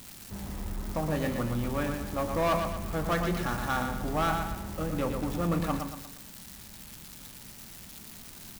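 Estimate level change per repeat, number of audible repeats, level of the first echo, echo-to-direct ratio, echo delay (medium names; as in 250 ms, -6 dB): -7.5 dB, 4, -6.0 dB, -5.0 dB, 117 ms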